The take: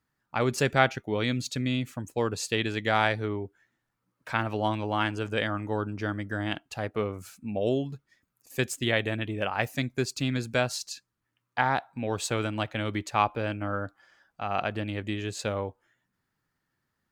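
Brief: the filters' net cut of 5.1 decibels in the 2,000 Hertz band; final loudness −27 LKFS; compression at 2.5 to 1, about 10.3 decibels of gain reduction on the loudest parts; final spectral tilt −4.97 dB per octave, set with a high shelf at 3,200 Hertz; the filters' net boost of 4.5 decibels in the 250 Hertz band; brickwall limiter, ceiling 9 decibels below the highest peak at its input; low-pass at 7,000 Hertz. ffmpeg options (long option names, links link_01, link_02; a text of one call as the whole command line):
ffmpeg -i in.wav -af "lowpass=7000,equalizer=frequency=250:width_type=o:gain=5.5,equalizer=frequency=2000:width_type=o:gain=-9,highshelf=frequency=3200:gain=6,acompressor=threshold=-34dB:ratio=2.5,volume=12dB,alimiter=limit=-15.5dB:level=0:latency=1" out.wav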